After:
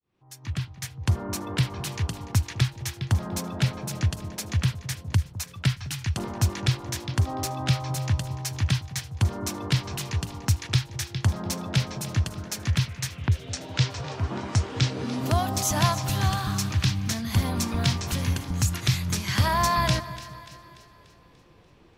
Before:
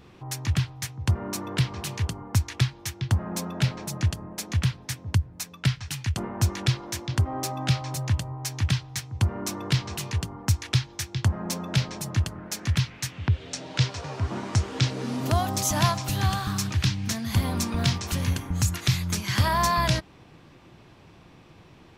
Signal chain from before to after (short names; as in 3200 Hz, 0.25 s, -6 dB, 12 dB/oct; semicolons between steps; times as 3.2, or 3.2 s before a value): opening faded in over 1.09 s; spectral noise reduction 6 dB; on a send: split-band echo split 900 Hz, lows 0.206 s, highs 0.292 s, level -15 dB